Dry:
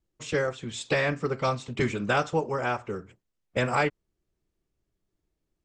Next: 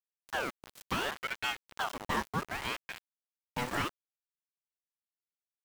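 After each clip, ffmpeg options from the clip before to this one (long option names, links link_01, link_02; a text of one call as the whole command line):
ffmpeg -i in.wav -af "bandreject=frequency=50:width_type=h:width=6,bandreject=frequency=100:width_type=h:width=6,bandreject=frequency=150:width_type=h:width=6,bandreject=frequency=200:width_type=h:width=6,bandreject=frequency=250:width_type=h:width=6,bandreject=frequency=300:width_type=h:width=6,aeval=exprs='val(0)*gte(abs(val(0)),0.0376)':channel_layout=same,aeval=exprs='val(0)*sin(2*PI*1200*n/s+1200*0.7/0.69*sin(2*PI*0.69*n/s))':channel_layout=same,volume=-5dB" out.wav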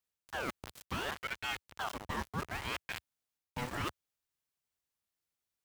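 ffmpeg -i in.wav -af "equalizer=frequency=76:width=0.9:gain=8.5,areverse,acompressor=threshold=-42dB:ratio=4,areverse,volume=6dB" out.wav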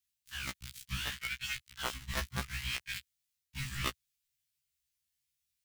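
ffmpeg -i in.wav -filter_complex "[0:a]acrossover=split=170|1800|2200[link_01][link_02][link_03][link_04];[link_02]acrusher=bits=4:mix=0:aa=0.000001[link_05];[link_01][link_05][link_03][link_04]amix=inputs=4:normalize=0,afftfilt=real='re*1.73*eq(mod(b,3),0)':imag='im*1.73*eq(mod(b,3),0)':win_size=2048:overlap=0.75,volume=7.5dB" out.wav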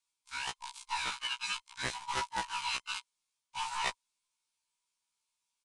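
ffmpeg -i in.wav -filter_complex "[0:a]afftfilt=real='real(if(between(b,1,1008),(2*floor((b-1)/48)+1)*48-b,b),0)':imag='imag(if(between(b,1,1008),(2*floor((b-1)/48)+1)*48-b,b),0)*if(between(b,1,1008),-1,1)':win_size=2048:overlap=0.75,asplit=2[link_01][link_02];[link_02]asoftclip=type=hard:threshold=-30.5dB,volume=-4dB[link_03];[link_01][link_03]amix=inputs=2:normalize=0,aresample=22050,aresample=44100,volume=-2dB" out.wav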